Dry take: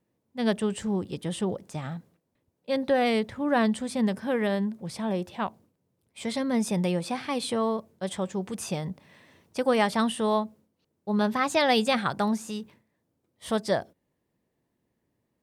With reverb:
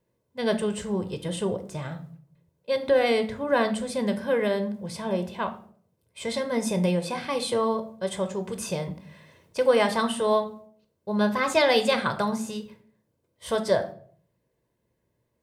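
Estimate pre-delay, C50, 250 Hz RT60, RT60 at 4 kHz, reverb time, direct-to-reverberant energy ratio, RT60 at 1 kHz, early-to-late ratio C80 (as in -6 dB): 16 ms, 13.0 dB, 0.65 s, 0.35 s, 0.55 s, 8.0 dB, 0.45 s, 17.0 dB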